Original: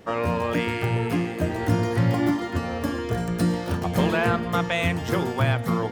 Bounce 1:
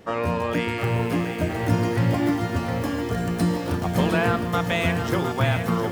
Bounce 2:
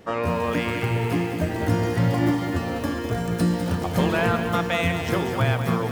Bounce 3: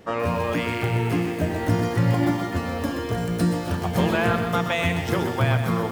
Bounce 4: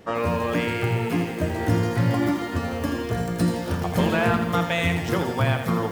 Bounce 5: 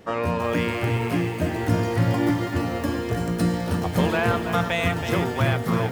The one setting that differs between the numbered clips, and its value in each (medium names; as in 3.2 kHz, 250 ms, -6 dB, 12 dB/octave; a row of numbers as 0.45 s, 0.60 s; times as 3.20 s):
bit-crushed delay, time: 711 ms, 202 ms, 127 ms, 82 ms, 326 ms